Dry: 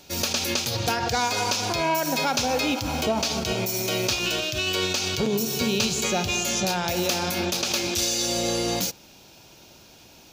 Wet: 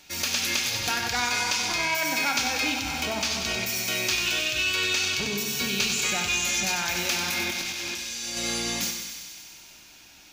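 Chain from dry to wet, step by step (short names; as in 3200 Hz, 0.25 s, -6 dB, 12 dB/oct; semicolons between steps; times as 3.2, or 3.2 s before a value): graphic EQ 125/500/2000/8000 Hz -8/-8/+8/+3 dB; 7.47–8.37 negative-ratio compressor -31 dBFS, ratio -1; thinning echo 95 ms, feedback 77%, high-pass 770 Hz, level -6.5 dB; shoebox room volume 260 m³, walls mixed, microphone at 0.47 m; gain -4.5 dB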